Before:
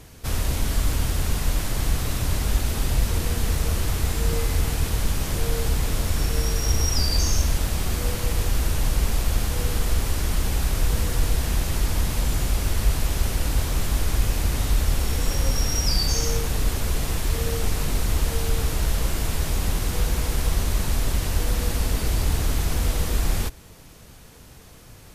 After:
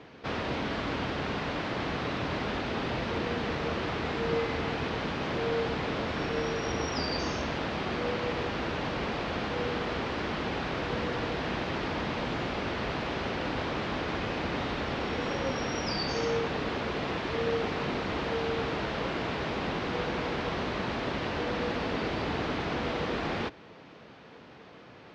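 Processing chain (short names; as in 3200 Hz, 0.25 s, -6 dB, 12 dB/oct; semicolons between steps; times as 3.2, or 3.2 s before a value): BPF 240–4800 Hz; air absorption 250 m; gain +3.5 dB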